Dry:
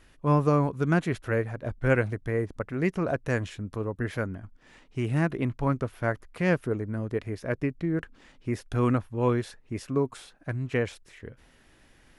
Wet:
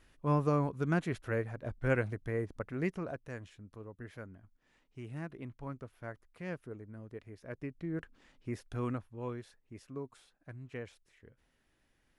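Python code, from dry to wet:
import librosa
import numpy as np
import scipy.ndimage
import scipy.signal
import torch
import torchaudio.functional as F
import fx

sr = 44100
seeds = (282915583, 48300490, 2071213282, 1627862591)

y = fx.gain(x, sr, db=fx.line((2.83, -7.0), (3.29, -16.5), (7.35, -16.5), (7.97, -9.0), (8.58, -9.0), (9.35, -16.0)))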